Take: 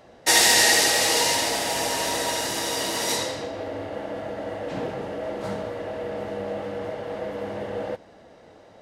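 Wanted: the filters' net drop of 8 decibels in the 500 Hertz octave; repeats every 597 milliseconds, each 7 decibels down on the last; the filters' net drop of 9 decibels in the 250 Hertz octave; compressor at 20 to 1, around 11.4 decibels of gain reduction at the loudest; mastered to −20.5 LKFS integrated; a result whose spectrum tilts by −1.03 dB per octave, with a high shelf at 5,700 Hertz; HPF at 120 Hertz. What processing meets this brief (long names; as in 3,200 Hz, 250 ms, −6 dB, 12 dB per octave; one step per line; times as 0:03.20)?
high-pass filter 120 Hz
parametric band 250 Hz −9 dB
parametric band 500 Hz −8 dB
high-shelf EQ 5,700 Hz +7 dB
downward compressor 20 to 1, threshold −22 dBFS
repeating echo 597 ms, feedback 45%, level −7 dB
level +5.5 dB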